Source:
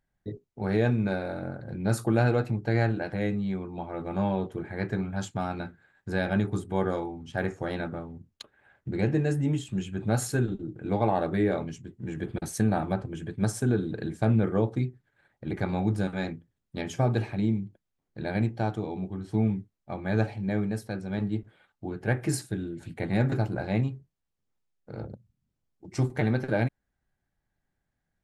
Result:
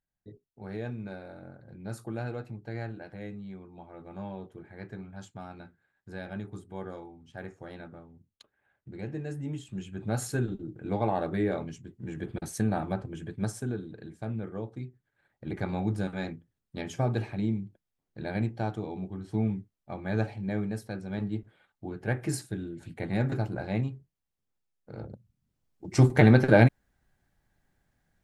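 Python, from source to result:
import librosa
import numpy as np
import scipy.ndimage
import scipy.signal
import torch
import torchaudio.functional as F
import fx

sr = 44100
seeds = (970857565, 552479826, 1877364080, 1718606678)

y = fx.gain(x, sr, db=fx.line((9.0, -12.0), (10.34, -3.0), (13.33, -3.0), (13.95, -11.5), (14.75, -11.5), (15.48, -3.0), (25.04, -3.0), (26.15, 8.0)))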